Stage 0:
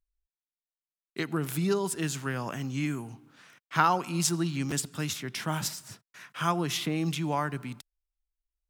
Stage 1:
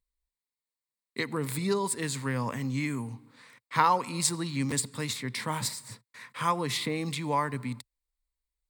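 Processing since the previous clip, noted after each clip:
EQ curve with evenly spaced ripples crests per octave 0.97, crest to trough 10 dB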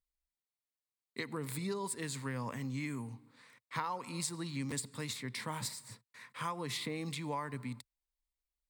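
downward compressor 6 to 1, threshold −27 dBFS, peak gain reduction 9.5 dB
level −6.5 dB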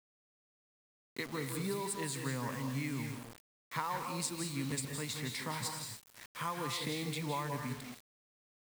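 convolution reverb RT60 0.50 s, pre-delay 151 ms, DRR 4 dB
bit-depth reduction 8 bits, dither none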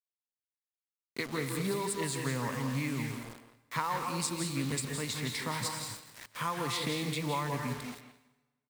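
far-end echo of a speakerphone 170 ms, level −10 dB
dense smooth reverb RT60 1.1 s, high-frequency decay 0.85×, pre-delay 115 ms, DRR 16.5 dB
highs frequency-modulated by the lows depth 0.13 ms
level +4 dB

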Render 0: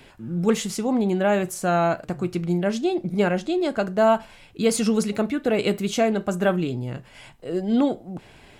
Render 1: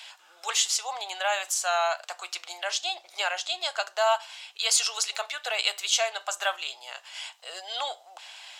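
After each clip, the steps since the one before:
Butterworth high-pass 720 Hz 36 dB per octave
flat-topped bell 4,700 Hz +9.5 dB
in parallel at −2 dB: downward compressor, threshold −34 dBFS, peak gain reduction 16 dB
on the sum: level −2.5 dB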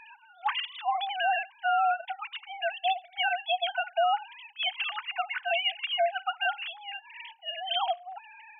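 three sine waves on the formant tracks
brickwall limiter −21 dBFS, peak gain reduction 9.5 dB
level +2.5 dB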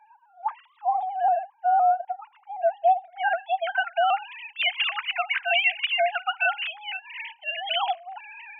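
low-pass filter sweep 630 Hz → 2,400 Hz, 0:02.45–0:04.16
pitch modulation by a square or saw wave saw up 3.9 Hz, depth 100 cents
level +2 dB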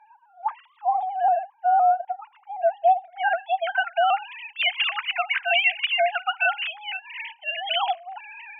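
downsampling to 8,000 Hz
level +1.5 dB

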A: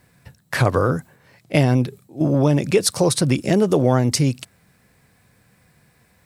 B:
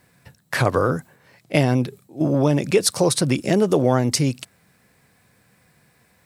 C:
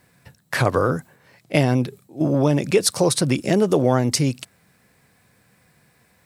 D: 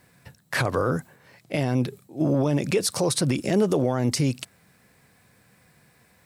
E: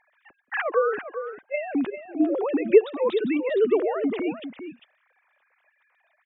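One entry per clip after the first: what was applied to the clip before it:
low-shelf EQ 100 Hz −8.5 dB
no processing that can be heard
brickwall limiter −13 dBFS, peak gain reduction 10.5 dB
three sine waves on the formant tracks; single-tap delay 399 ms −10.5 dB

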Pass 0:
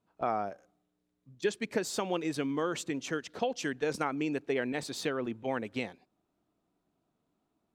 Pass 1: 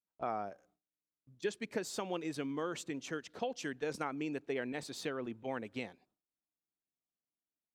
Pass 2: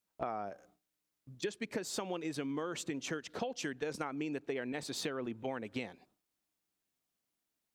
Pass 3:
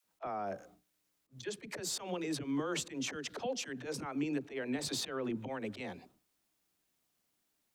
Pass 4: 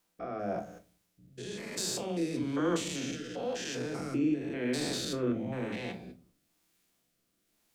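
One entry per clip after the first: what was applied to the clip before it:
noise gate with hold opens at −56 dBFS; level −6 dB
downward compressor 4 to 1, threshold −45 dBFS, peak gain reduction 12.5 dB; level +9 dB
volume swells 129 ms; brickwall limiter −34 dBFS, peak gain reduction 9 dB; all-pass dispersion lows, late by 56 ms, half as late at 310 Hz; level +6.5 dB
spectrum averaged block by block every 200 ms; rotating-speaker cabinet horn 1 Hz; rectangular room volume 180 cubic metres, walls furnished, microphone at 0.79 metres; level +8.5 dB

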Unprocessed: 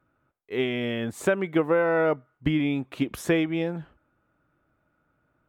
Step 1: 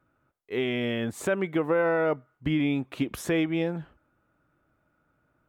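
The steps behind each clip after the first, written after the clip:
brickwall limiter −16.5 dBFS, peak gain reduction 5.5 dB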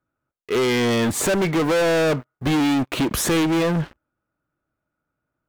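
leveller curve on the samples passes 5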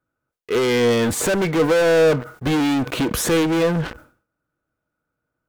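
hollow resonant body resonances 480/1,500 Hz, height 8 dB, ringing for 85 ms
level that may fall only so fast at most 130 dB per second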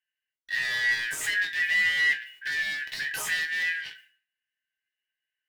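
band-splitting scrambler in four parts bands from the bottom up 4123
resonators tuned to a chord G#2 sus4, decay 0.21 s
level +2 dB

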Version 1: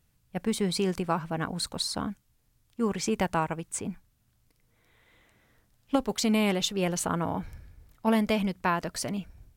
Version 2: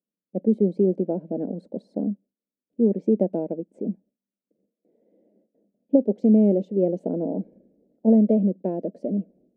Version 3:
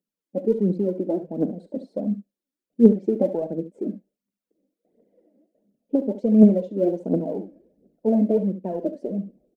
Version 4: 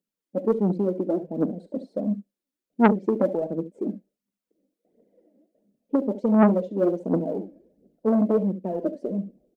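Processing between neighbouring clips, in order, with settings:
noise gate with hold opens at −54 dBFS; elliptic band-pass filter 200–590 Hz, stop band 40 dB; level +9 dB
phase shifter 1.4 Hz, delay 3.9 ms, feedback 69%; on a send: ambience of single reflections 39 ms −16.5 dB, 70 ms −12 dB; on the sum: level −1.5 dB
saturating transformer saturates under 880 Hz

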